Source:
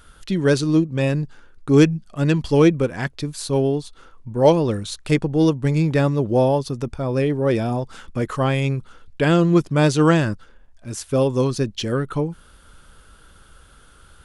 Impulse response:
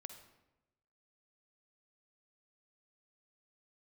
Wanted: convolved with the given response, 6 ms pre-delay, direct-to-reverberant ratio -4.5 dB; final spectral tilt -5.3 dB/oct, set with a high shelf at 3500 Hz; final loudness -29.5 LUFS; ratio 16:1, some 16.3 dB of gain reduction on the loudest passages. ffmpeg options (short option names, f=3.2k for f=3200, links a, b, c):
-filter_complex "[0:a]highshelf=f=3.5k:g=7.5,acompressor=threshold=-25dB:ratio=16,asplit=2[a][b];[1:a]atrim=start_sample=2205,adelay=6[c];[b][c]afir=irnorm=-1:irlink=0,volume=9.5dB[d];[a][d]amix=inputs=2:normalize=0,volume=-5dB"